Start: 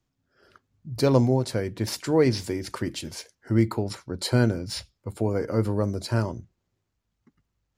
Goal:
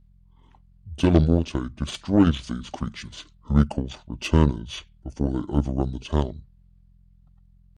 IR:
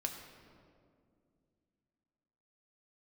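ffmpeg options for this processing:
-af "aeval=exprs='val(0)+0.00282*(sin(2*PI*60*n/s)+sin(2*PI*2*60*n/s)/2+sin(2*PI*3*60*n/s)/3+sin(2*PI*4*60*n/s)/4+sin(2*PI*5*60*n/s)/5)':c=same,asetrate=28595,aresample=44100,atempo=1.54221,aeval=exprs='0.501*(cos(1*acos(clip(val(0)/0.501,-1,1)))-cos(1*PI/2))+0.0355*(cos(7*acos(clip(val(0)/0.501,-1,1)))-cos(7*PI/2))':c=same,volume=1.5"

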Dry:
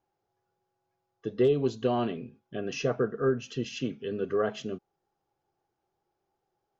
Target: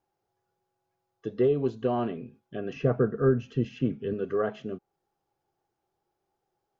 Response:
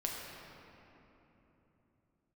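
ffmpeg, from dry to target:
-filter_complex "[0:a]acrossover=split=2400[s0][s1];[s1]acompressor=threshold=0.00112:ratio=12[s2];[s0][s2]amix=inputs=2:normalize=0,asettb=1/sr,asplit=3[s3][s4][s5];[s3]atrim=end=2.764[s6];[s4]atrim=start=2.76:end=4.14,asetpts=PTS-STARTPTS,afade=t=in:d=0.004:c=qsin,afade=t=out:st=1.376:d=0.004:c=qsin,lowshelf=f=230:g=10.5[s7];[s5]atrim=start=4.136[s8];[s6][s7]acrossfade=d=0.004:c1=hsin:c2=qsin[s9];[s9][s8]acrossfade=d=0.004:c1=qsin:c2=hsin"

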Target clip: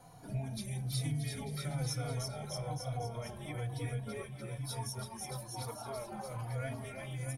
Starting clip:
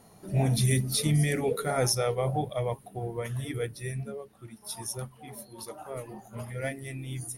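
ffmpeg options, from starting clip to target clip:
-filter_complex "[0:a]equalizer=f=1100:w=5.8:g=8,acrossover=split=220|3100[s0][s1][s2];[s1]alimiter=level_in=1.58:limit=0.0631:level=0:latency=1:release=89,volume=0.631[s3];[s0][s3][s2]amix=inputs=3:normalize=0,highshelf=f=10000:g=-8.5,aecho=1:1:1.3:0.45,aecho=1:1:330|627|894.3|1135|1351:0.631|0.398|0.251|0.158|0.1,acompressor=threshold=0.0158:ratio=3,asplit=2[s4][s5];[s5]adelay=3.5,afreqshift=-1.1[s6];[s4][s6]amix=inputs=2:normalize=1,volume=1.19"

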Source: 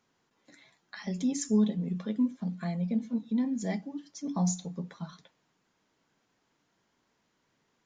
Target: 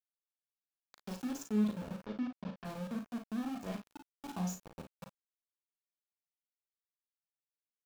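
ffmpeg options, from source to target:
-filter_complex "[0:a]aeval=exprs='val(0)*gte(abs(val(0)),0.0282)':c=same,asplit=3[s0][s1][s2];[s0]afade=t=out:st=2.03:d=0.02[s3];[s1]lowpass=f=5000:w=0.5412,lowpass=f=5000:w=1.3066,afade=t=in:st=2.03:d=0.02,afade=t=out:st=2.64:d=0.02[s4];[s2]afade=t=in:st=2.64:d=0.02[s5];[s3][s4][s5]amix=inputs=3:normalize=0,bandreject=f=2000:w=7.7,asplit=2[s6][s7];[s7]aecho=0:1:38|53:0.447|0.316[s8];[s6][s8]amix=inputs=2:normalize=0,adynamicequalizer=threshold=0.00224:dfrequency=3200:dqfactor=0.7:tfrequency=3200:tqfactor=0.7:attack=5:release=100:ratio=0.375:range=3.5:mode=cutabove:tftype=highshelf,volume=0.355"

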